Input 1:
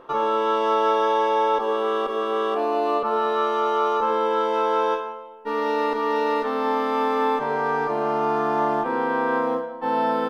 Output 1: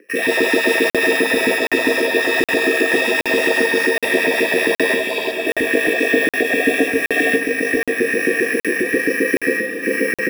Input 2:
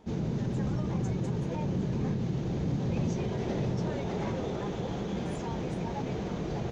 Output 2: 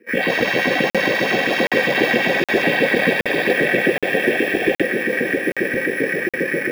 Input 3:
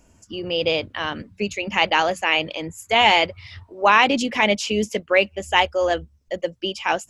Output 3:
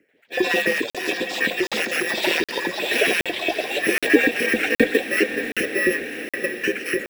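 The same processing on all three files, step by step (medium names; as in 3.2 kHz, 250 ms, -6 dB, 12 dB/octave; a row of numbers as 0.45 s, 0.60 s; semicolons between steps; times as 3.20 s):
bit-reversed sample order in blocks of 64 samples; overload inside the chain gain 14.5 dB; LFO high-pass saw up 7.5 Hz 270–1600 Hz; frequency shift +13 Hz; gate -37 dBFS, range -11 dB; reverse; upward compressor, threshold -41 dBFS; reverse; FFT filter 530 Hz 0 dB, 980 Hz -30 dB, 1.9 kHz +12 dB, 3.7 kHz -21 dB; ever faster or slower copies 87 ms, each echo +6 st, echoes 3, each echo -6 dB; treble shelf 10 kHz -4.5 dB; hum notches 50/100/150/200 Hz; echo that smears into a reverb 633 ms, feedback 66%, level -11 dB; crackling interface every 0.77 s, samples 2048, zero, from 0.90 s; peak normalisation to -2 dBFS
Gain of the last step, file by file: +12.0 dB, +18.0 dB, +9.0 dB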